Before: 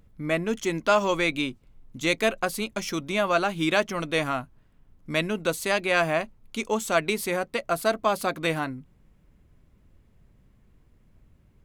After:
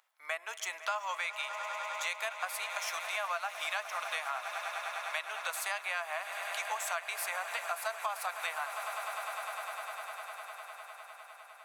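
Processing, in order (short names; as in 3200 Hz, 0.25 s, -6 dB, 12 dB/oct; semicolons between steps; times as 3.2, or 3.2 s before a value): dynamic EQ 4000 Hz, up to -5 dB, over -41 dBFS, Q 0.85; steep high-pass 750 Hz 36 dB/oct; on a send: swelling echo 0.101 s, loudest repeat 8, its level -18 dB; on the sum: compressor 6:1, threshold -32 dBFS, peak gain reduction 11.5 dB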